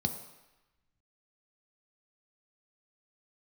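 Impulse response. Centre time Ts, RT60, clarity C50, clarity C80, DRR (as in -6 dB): 15 ms, 1.0 s, 10.0 dB, 11.5 dB, 6.0 dB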